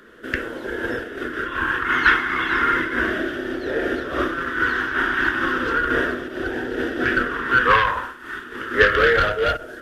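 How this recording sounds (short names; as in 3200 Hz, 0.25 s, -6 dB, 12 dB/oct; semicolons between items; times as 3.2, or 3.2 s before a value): phasing stages 2, 0.34 Hz, lowest notch 540–1100 Hz; noise-modulated level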